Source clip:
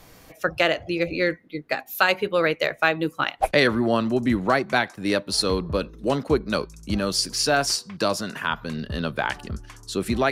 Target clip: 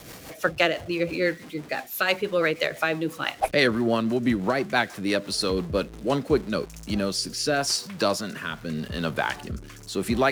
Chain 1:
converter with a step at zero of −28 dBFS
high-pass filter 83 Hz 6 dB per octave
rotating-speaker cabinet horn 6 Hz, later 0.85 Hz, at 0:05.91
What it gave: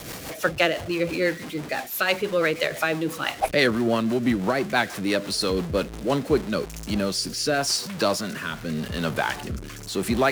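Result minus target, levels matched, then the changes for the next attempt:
converter with a step at zero: distortion +7 dB
change: converter with a step at zero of −36 dBFS

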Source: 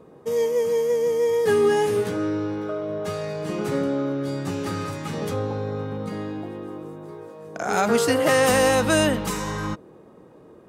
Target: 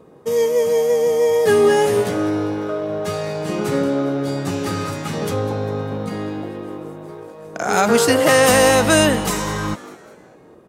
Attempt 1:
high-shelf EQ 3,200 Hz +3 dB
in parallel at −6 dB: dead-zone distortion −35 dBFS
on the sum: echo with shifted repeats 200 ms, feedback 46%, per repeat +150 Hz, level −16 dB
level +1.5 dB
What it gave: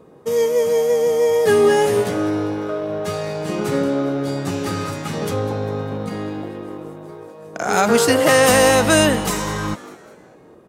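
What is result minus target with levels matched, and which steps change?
dead-zone distortion: distortion +6 dB
change: dead-zone distortion −41.5 dBFS

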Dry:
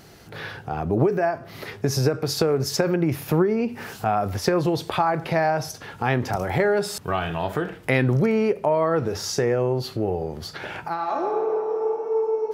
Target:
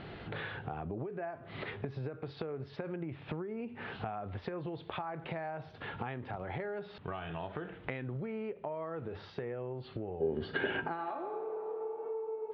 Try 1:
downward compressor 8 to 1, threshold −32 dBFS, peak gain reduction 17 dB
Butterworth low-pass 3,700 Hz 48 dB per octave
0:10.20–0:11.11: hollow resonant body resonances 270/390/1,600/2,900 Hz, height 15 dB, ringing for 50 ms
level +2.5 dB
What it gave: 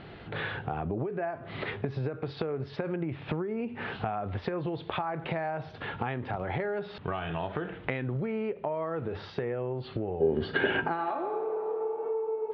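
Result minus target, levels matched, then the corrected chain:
downward compressor: peak gain reduction −7 dB
downward compressor 8 to 1, threshold −40 dBFS, peak gain reduction 24 dB
Butterworth low-pass 3,700 Hz 48 dB per octave
0:10.20–0:11.11: hollow resonant body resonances 270/390/1,600/2,900 Hz, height 15 dB, ringing for 50 ms
level +2.5 dB

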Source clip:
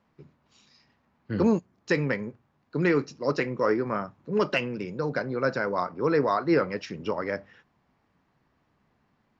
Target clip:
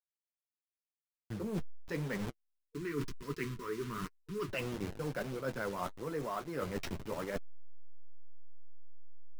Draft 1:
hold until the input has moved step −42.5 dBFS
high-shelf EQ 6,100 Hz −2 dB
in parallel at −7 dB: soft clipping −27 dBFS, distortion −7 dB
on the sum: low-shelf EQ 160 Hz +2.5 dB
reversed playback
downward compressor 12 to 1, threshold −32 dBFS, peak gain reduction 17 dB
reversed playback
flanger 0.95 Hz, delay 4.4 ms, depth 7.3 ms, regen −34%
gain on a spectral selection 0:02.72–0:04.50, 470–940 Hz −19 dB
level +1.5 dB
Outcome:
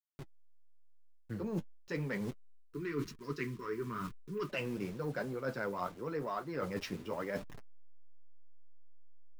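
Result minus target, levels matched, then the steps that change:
hold until the input has moved: distortion −11 dB
change: hold until the input has moved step −31.5 dBFS

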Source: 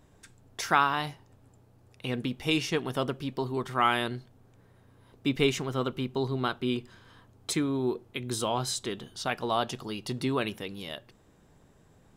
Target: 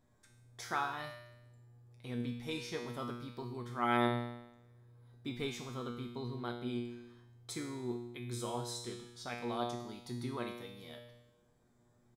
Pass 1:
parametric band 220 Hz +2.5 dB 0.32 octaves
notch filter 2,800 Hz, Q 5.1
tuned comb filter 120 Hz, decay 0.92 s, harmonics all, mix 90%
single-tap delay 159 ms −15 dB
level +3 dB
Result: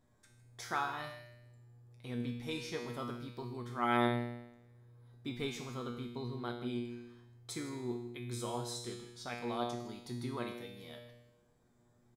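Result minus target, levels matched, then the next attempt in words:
echo-to-direct +11.5 dB
parametric band 220 Hz +2.5 dB 0.32 octaves
notch filter 2,800 Hz, Q 5.1
tuned comb filter 120 Hz, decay 0.92 s, harmonics all, mix 90%
single-tap delay 159 ms −26.5 dB
level +3 dB

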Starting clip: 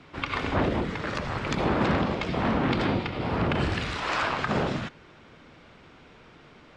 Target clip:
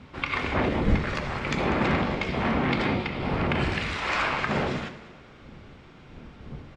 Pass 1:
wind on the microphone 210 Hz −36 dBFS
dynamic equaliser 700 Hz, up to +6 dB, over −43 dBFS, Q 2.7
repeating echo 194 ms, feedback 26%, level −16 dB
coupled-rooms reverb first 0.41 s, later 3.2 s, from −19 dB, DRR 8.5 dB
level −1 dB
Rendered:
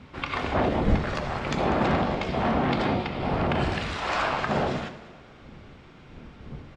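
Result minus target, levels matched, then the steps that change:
2,000 Hz band −3.0 dB
change: dynamic equaliser 2,200 Hz, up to +6 dB, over −43 dBFS, Q 2.7

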